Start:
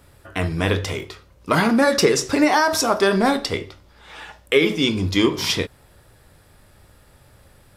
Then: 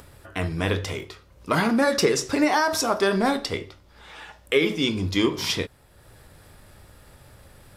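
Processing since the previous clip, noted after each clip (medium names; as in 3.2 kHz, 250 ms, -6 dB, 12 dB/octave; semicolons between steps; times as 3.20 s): upward compressor, threshold -37 dBFS; trim -4 dB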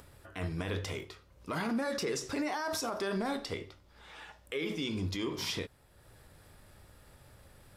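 peak limiter -18 dBFS, peak gain reduction 10 dB; trim -7.5 dB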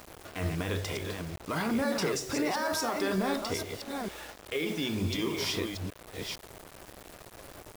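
chunks repeated in reverse 454 ms, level -5 dB; band noise 270–720 Hz -55 dBFS; bit crusher 8-bit; trim +3 dB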